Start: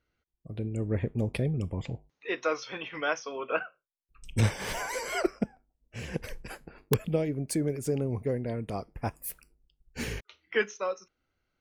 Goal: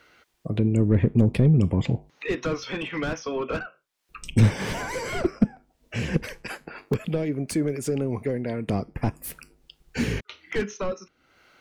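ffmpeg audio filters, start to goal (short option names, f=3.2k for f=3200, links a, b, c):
-filter_complex "[0:a]asettb=1/sr,asplit=3[a][b][c];[a]atrim=end=6.234[d];[b]atrim=start=6.23:end=8.68,asetpts=PTS-STARTPTS,afade=t=in:d=0.004:c=qsin,afade=t=out:st=2.446:d=0.004:c=qsin,lowshelf=f=410:g=-11.5[e];[c]atrim=start=8.676[f];[d][e]acrossfade=d=0.004:c1=hsin:c2=qsin[g];[g][f]acrossfade=d=0.004:c1=qsin:c2=hsin,asplit=2[h][i];[i]highpass=f=720:p=1,volume=26dB,asoftclip=type=tanh:threshold=-7dB[j];[h][j]amix=inputs=2:normalize=0,lowpass=f=4.7k:p=1,volume=-6dB,acrossover=split=280[k][l];[l]acompressor=threshold=-47dB:ratio=3[m];[k][m]amix=inputs=2:normalize=0,volume=7dB"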